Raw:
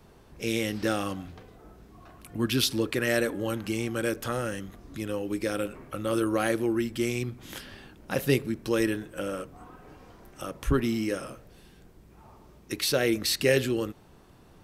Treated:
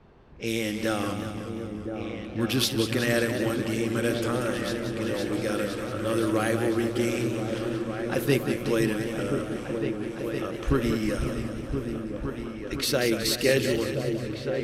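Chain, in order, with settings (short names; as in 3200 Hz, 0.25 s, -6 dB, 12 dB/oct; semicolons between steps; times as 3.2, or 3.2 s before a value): low-pass opened by the level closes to 2700 Hz, open at -26.5 dBFS; on a send: repeats that get brighter 0.511 s, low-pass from 200 Hz, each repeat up 2 oct, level -3 dB; on the sum: warbling echo 0.185 s, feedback 63%, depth 126 cents, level -8 dB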